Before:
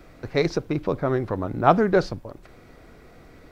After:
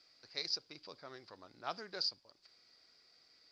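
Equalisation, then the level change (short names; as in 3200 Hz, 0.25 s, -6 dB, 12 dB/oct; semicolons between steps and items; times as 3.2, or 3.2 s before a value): band-pass 4800 Hz, Q 14; tilt -1.5 dB/oct; +13.0 dB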